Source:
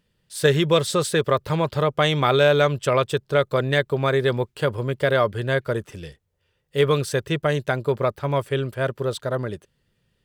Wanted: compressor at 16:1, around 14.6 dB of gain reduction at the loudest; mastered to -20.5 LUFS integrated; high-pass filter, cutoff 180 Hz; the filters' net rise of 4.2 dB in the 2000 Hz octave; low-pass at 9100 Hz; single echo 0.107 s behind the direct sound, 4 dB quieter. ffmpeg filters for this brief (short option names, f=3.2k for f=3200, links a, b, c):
-af "highpass=180,lowpass=9.1k,equalizer=f=2k:t=o:g=5.5,acompressor=threshold=-26dB:ratio=16,aecho=1:1:107:0.631,volume=10.5dB"